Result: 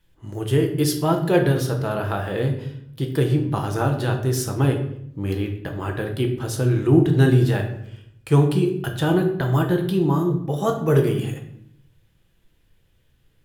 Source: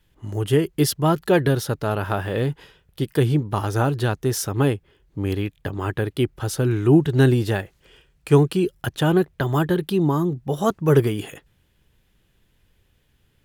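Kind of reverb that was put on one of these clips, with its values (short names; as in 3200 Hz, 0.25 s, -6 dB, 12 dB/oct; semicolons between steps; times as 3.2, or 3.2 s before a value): shoebox room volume 150 m³, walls mixed, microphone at 0.7 m; gain -3 dB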